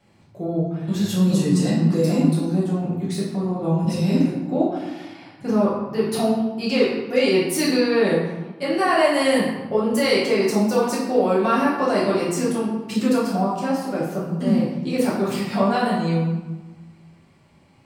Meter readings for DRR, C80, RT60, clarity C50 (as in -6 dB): -8.0 dB, 4.5 dB, 1.2 s, 1.5 dB